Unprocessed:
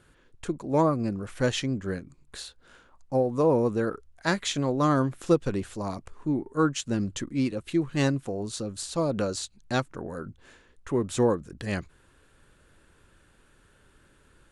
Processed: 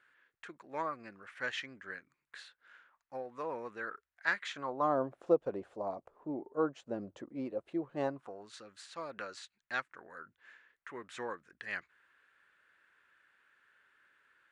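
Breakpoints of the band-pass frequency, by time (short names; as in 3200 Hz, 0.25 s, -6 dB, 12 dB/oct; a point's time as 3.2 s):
band-pass, Q 2.3
4.41 s 1800 Hz
4.97 s 630 Hz
7.99 s 630 Hz
8.5 s 1800 Hz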